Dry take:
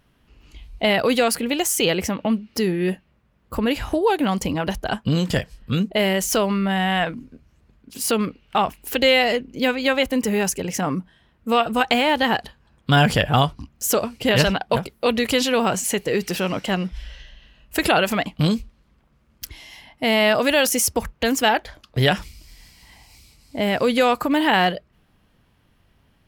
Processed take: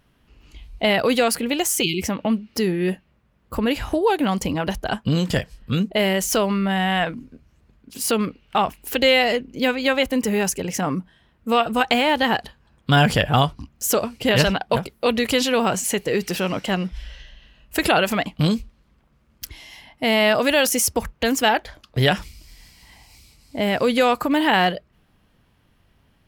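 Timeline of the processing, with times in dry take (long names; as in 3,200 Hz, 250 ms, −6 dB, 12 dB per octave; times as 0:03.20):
0:01.83–0:02.03: time-frequency box erased 400–2,100 Hz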